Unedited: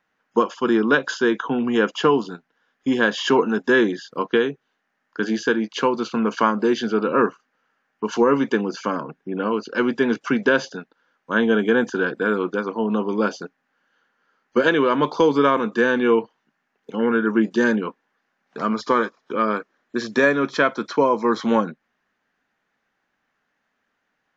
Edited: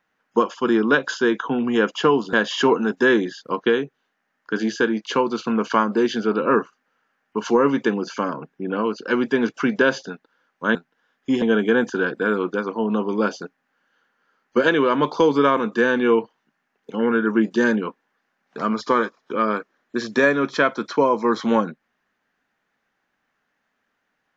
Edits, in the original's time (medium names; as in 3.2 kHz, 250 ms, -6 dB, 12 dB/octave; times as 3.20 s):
2.33–3.00 s: move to 11.42 s